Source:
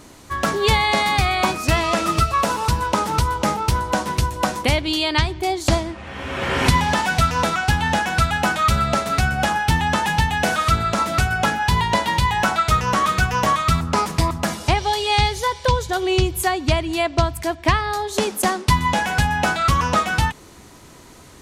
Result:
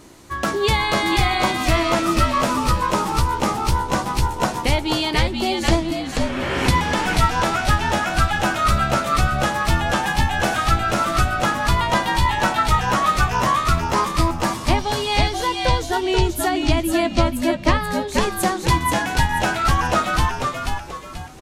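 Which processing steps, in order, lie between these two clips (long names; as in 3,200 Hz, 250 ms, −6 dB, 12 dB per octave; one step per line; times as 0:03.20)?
parametric band 340 Hz +7 dB 0.25 octaves
double-tracking delay 15 ms −12 dB
on a send: echo with shifted repeats 484 ms, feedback 35%, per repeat −76 Hz, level −3.5 dB
on the sum: level −2.5 dB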